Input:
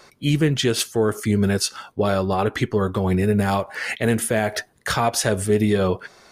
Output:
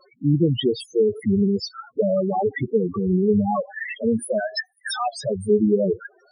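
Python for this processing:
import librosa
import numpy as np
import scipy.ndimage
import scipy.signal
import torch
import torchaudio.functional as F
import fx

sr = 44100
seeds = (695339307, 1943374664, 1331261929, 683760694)

y = scipy.signal.sosfilt(scipy.signal.butter(2, 130.0, 'highpass', fs=sr, output='sos'), x)
y = fx.tilt_eq(y, sr, slope=4.5, at=(4.39, 5.13), fade=0.02)
y = fx.rider(y, sr, range_db=5, speed_s=2.0)
y = fx.spec_topn(y, sr, count=4)
y = fx.record_warp(y, sr, rpm=78.0, depth_cents=100.0)
y = F.gain(torch.from_numpy(y), 2.0).numpy()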